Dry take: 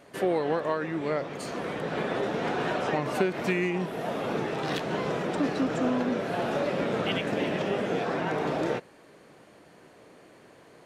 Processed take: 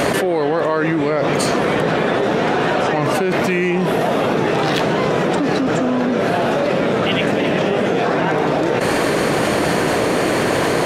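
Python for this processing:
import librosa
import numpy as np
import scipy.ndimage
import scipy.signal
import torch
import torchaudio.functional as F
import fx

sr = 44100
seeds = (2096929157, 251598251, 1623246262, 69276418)

y = fx.env_flatten(x, sr, amount_pct=100)
y = y * librosa.db_to_amplitude(4.0)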